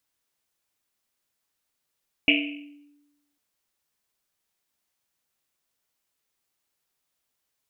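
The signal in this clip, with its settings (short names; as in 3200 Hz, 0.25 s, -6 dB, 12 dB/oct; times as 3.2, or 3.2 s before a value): Risset drum, pitch 290 Hz, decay 1.11 s, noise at 2600 Hz, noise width 680 Hz, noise 55%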